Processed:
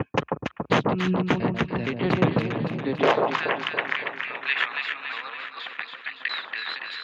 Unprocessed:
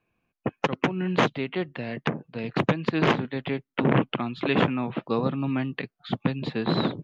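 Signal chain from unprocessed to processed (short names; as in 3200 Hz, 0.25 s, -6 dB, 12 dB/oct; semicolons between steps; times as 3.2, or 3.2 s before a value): slices in reverse order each 0.233 s, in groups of 3; high-pass sweep 67 Hz -> 1800 Hz, 2.35–3.51; echo with dull and thin repeats by turns 0.141 s, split 1200 Hz, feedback 75%, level -2.5 dB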